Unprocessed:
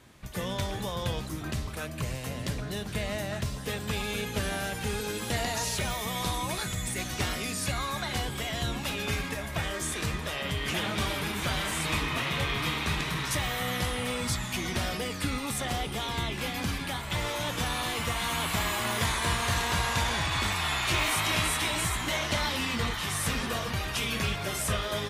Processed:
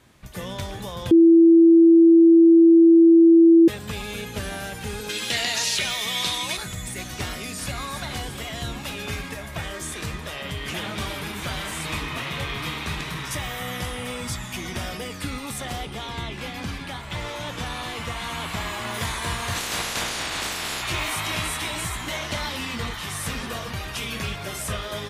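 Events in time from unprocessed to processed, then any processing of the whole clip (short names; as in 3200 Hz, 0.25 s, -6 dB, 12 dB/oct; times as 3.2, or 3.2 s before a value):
1.11–3.68 bleep 332 Hz -9 dBFS
5.09–6.57 weighting filter D
7.24–7.8 echo throw 0.34 s, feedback 65%, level -8.5 dB
13.18–15.2 notch 4200 Hz
15.85–18.94 high shelf 9500 Hz -11 dB
19.54–20.81 spectral limiter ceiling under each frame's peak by 19 dB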